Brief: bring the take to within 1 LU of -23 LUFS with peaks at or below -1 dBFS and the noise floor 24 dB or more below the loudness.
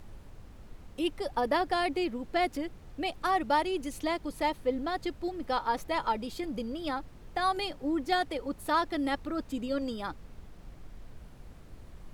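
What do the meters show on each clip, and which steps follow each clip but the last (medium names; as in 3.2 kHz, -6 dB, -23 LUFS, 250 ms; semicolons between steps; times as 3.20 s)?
noise floor -51 dBFS; noise floor target -56 dBFS; loudness -32.0 LUFS; peak level -15.5 dBFS; loudness target -23.0 LUFS
-> noise print and reduce 6 dB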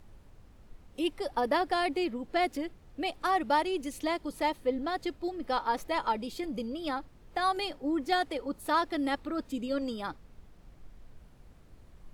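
noise floor -56 dBFS; loudness -32.0 LUFS; peak level -15.0 dBFS; loudness target -23.0 LUFS
-> trim +9 dB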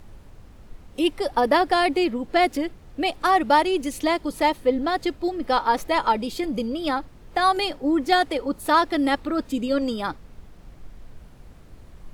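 loudness -23.0 LUFS; peak level -6.0 dBFS; noise floor -47 dBFS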